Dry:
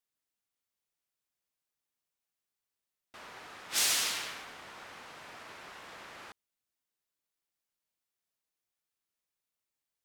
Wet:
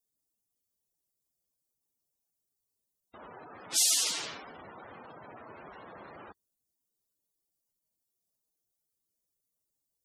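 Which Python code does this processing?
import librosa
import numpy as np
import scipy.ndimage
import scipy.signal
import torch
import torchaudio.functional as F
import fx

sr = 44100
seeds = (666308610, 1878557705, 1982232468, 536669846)

y = fx.peak_eq(x, sr, hz=1900.0, db=-8.5, octaves=2.5)
y = fx.spec_gate(y, sr, threshold_db=-10, keep='strong')
y = F.gain(torch.from_numpy(y), 7.5).numpy()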